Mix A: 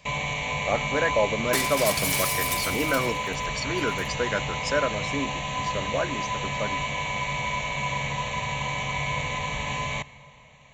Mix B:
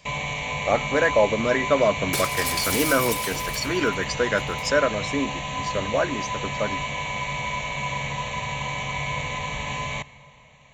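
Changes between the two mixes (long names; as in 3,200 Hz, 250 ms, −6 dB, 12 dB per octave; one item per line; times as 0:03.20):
speech +4.5 dB
second sound: entry +0.60 s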